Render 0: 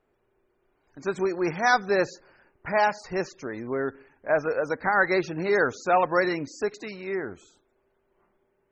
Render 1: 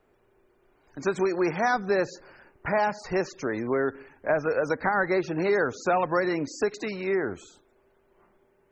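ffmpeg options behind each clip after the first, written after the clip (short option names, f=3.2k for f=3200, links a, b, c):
-filter_complex "[0:a]acrossover=split=290|1600[a][b][c];[a]acompressor=threshold=-40dB:ratio=4[d];[b]acompressor=threshold=-30dB:ratio=4[e];[c]acompressor=threshold=-44dB:ratio=4[f];[d][e][f]amix=inputs=3:normalize=0,volume=6dB"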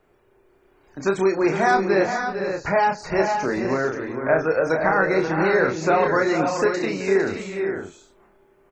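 -filter_complex "[0:a]asplit=2[a][b];[b]adelay=31,volume=-4.5dB[c];[a][c]amix=inputs=2:normalize=0,asplit=2[d][e];[e]aecho=0:1:379|455|530:0.15|0.376|0.422[f];[d][f]amix=inputs=2:normalize=0,volume=3.5dB"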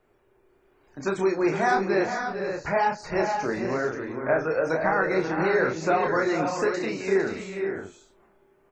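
-af "flanger=delay=8.1:depth=9.5:regen=-52:speed=1:shape=sinusoidal"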